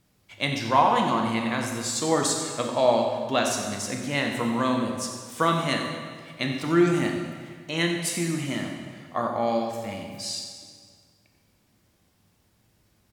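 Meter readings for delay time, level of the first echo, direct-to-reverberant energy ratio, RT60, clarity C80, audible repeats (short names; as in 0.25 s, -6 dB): 90 ms, -11.5 dB, 1.5 dB, 1.8 s, 4.5 dB, 1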